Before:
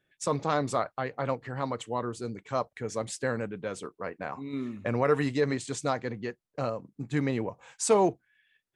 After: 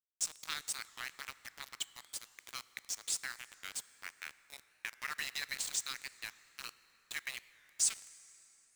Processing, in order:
Bessel high-pass filter 2,800 Hz, order 6
downward compressor 1.5 to 1, threshold −51 dBFS, peak gain reduction 8.5 dB
centre clipping without the shift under −47.5 dBFS
dense smooth reverb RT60 4.4 s, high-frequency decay 0.6×, DRR 16 dB
wow of a warped record 45 rpm, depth 160 cents
level +9.5 dB

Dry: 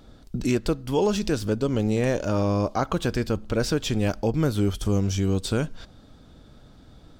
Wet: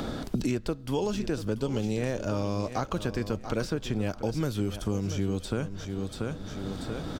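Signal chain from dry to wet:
repeating echo 686 ms, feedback 23%, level −13 dB
multiband upward and downward compressor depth 100%
level −6.5 dB

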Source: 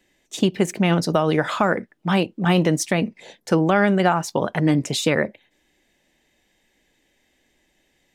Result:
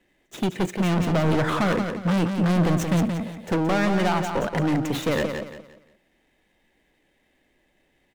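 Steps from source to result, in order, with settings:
running median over 9 samples
0:00.99–0:03.56: low-shelf EQ 320 Hz +9 dB
hard clipping −19.5 dBFS, distortion −5 dB
repeating echo 175 ms, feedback 32%, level −6.5 dB

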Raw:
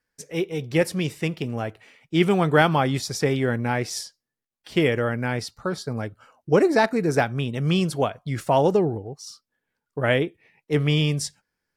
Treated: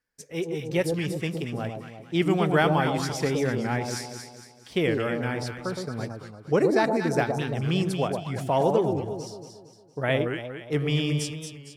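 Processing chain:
delay that swaps between a low-pass and a high-pass 115 ms, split 950 Hz, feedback 65%, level −3.5 dB
wow of a warped record 45 rpm, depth 100 cents
level −4.5 dB

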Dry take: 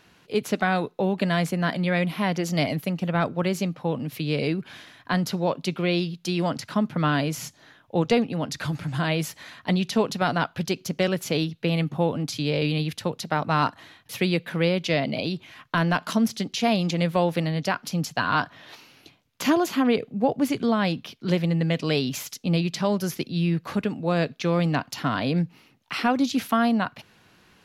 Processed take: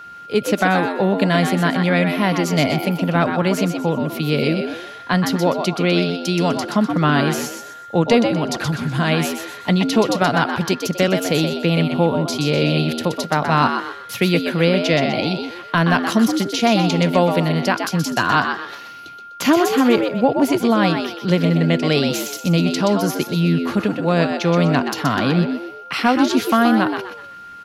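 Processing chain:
echo with shifted repeats 125 ms, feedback 35%, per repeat +85 Hz, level −6.5 dB
steady tone 1,400 Hz −41 dBFS
level +6 dB

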